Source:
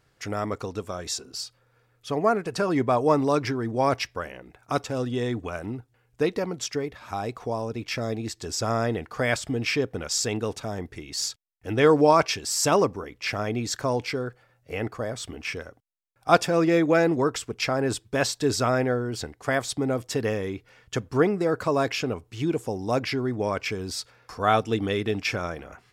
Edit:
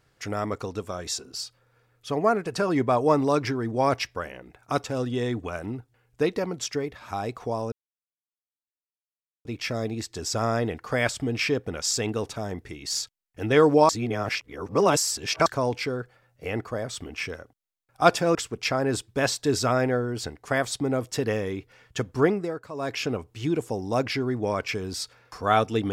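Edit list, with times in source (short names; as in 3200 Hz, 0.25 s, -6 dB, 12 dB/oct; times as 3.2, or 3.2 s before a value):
7.72 insert silence 1.73 s
12.16–13.73 reverse
16.62–17.32 cut
21.25–22.02 dip -13.5 dB, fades 0.32 s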